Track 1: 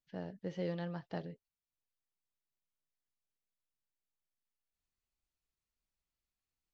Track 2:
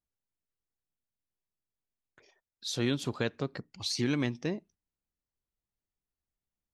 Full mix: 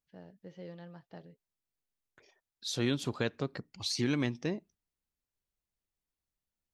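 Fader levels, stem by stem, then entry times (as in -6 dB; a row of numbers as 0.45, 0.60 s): -8.5, -1.0 dB; 0.00, 0.00 s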